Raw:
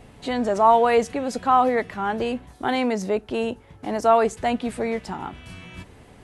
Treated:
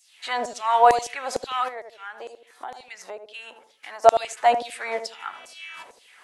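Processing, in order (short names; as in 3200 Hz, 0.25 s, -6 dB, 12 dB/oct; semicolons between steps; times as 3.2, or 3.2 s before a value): LFO high-pass saw down 2.2 Hz 530–7000 Hz; darkening echo 78 ms, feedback 27%, low-pass 830 Hz, level -7 dB; 1.68–4.04 compressor 4:1, threshold -39 dBFS, peak gain reduction 19.5 dB; gain +1.5 dB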